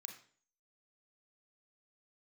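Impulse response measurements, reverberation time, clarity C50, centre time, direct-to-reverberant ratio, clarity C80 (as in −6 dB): 0.45 s, 6.5 dB, 21 ms, 3.0 dB, 11.0 dB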